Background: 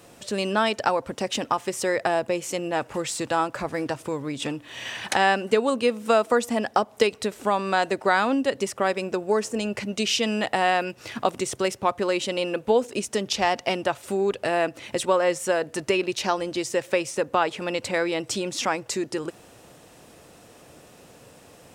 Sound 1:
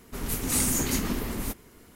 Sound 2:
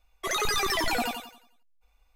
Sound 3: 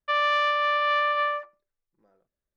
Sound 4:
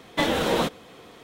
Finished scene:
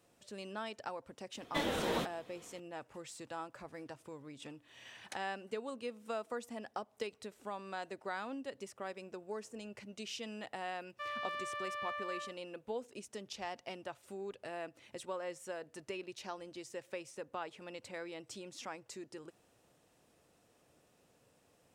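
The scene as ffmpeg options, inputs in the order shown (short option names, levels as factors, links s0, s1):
-filter_complex "[0:a]volume=0.1[s0];[3:a]aeval=exprs='sgn(val(0))*max(abs(val(0))-0.00282,0)':c=same[s1];[4:a]atrim=end=1.23,asetpts=PTS-STARTPTS,volume=0.266,afade=t=in:d=0.004:c=hsin,afade=t=out:st=1.226:d=0.004:c=hsin,adelay=1370[s2];[s1]atrim=end=2.56,asetpts=PTS-STARTPTS,volume=0.133,afade=t=in:d=0.004:c=hsin,afade=t=out:st=2.556:d=0.004:c=hsin,adelay=10910[s3];[s0][s2][s3]amix=inputs=3:normalize=0"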